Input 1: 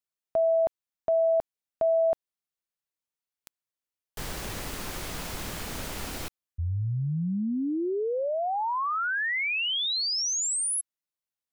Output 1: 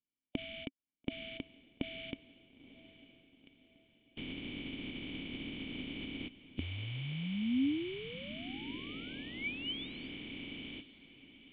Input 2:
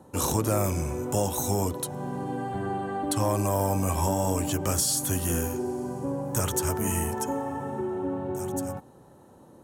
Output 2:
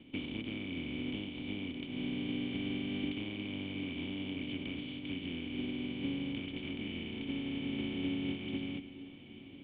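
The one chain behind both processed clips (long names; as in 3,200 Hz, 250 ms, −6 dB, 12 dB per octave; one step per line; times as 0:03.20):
compressing power law on the bin magnitudes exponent 0.21
downward compressor, threshold −32 dBFS
formant resonators in series i
feedback delay with all-pass diffusion 937 ms, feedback 44%, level −15 dB
level +13 dB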